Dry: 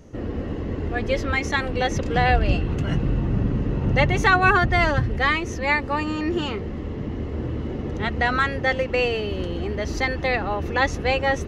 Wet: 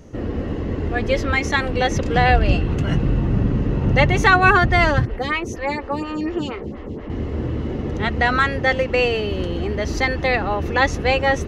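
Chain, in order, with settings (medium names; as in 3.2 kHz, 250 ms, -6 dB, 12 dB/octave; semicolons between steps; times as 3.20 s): 5.05–7.10 s: lamp-driven phase shifter 4.2 Hz; trim +3.5 dB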